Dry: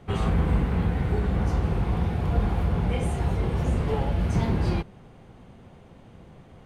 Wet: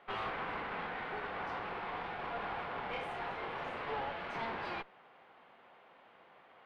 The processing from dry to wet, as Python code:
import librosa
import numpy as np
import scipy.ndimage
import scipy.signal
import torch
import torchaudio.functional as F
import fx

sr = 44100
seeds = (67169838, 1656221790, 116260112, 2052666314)

y = scipy.signal.sosfilt(scipy.signal.butter(2, 1000.0, 'highpass', fs=sr, output='sos'), x)
y = fx.tube_stage(y, sr, drive_db=39.0, bias=0.75)
y = fx.air_absorb(y, sr, metres=390.0)
y = y * librosa.db_to_amplitude(8.0)